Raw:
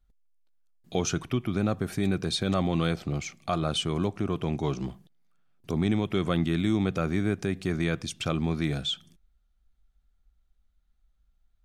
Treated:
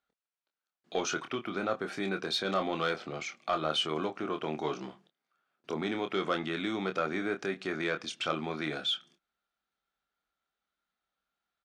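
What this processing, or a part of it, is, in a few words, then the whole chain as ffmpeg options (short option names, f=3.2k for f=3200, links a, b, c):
intercom: -filter_complex "[0:a]highpass=390,lowpass=4.8k,equalizer=f=1.4k:t=o:w=0.41:g=4.5,asoftclip=type=tanh:threshold=-18.5dB,asplit=2[a][b];[b]adelay=26,volume=-7dB[c];[a][c]amix=inputs=2:normalize=0"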